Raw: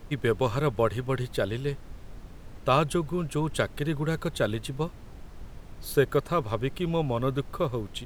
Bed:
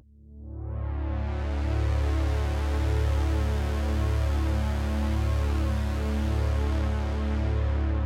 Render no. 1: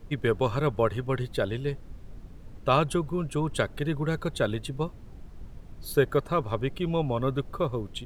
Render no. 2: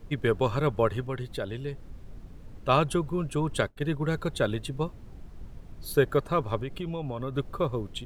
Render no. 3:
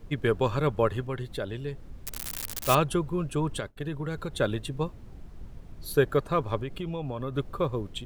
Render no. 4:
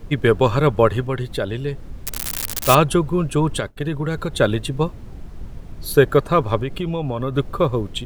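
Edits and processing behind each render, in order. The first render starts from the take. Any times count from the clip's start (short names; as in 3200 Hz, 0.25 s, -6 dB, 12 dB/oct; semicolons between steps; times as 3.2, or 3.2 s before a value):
denoiser 7 dB, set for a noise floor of -46 dBFS
1.04–2.69 compressor 1.5:1, threshold -37 dBFS; 3.61–4.05 expander -30 dBFS; 6.6–7.35 compressor, threshold -29 dBFS
2.04–2.75 switching spikes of -16.5 dBFS; 3.53–4.39 compressor 4:1, threshold -29 dBFS
gain +9.5 dB; limiter -1 dBFS, peak gain reduction 1.5 dB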